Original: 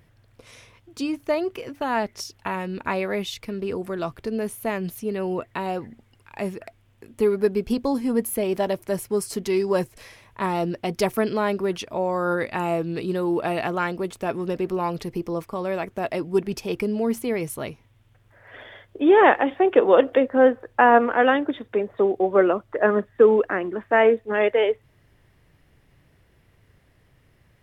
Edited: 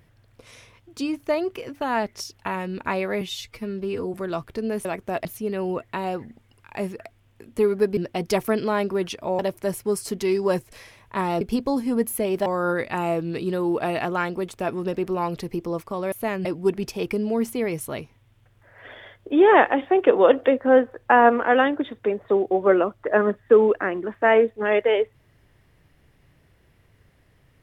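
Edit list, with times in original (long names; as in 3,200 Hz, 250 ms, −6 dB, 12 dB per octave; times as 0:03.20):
0:03.21–0:03.83: time-stretch 1.5×
0:04.54–0:04.87: swap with 0:15.74–0:16.14
0:07.59–0:08.64: swap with 0:10.66–0:12.08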